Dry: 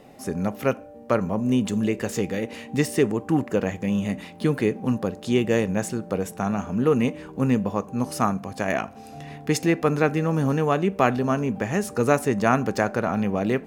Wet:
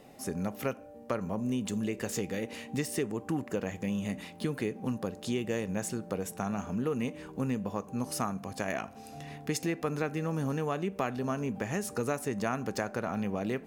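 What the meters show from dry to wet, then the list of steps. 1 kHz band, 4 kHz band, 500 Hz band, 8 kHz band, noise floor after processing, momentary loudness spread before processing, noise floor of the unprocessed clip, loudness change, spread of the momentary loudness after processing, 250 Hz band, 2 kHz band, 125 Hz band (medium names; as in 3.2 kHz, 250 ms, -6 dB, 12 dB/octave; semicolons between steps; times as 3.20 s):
-10.5 dB, -6.5 dB, -10.5 dB, -4.0 dB, -49 dBFS, 7 LU, -43 dBFS, -10.0 dB, 4 LU, -9.5 dB, -9.5 dB, -9.5 dB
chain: treble shelf 4 kHz +5.5 dB; compression 3:1, threshold -24 dBFS, peak gain reduction 8.5 dB; trim -5.5 dB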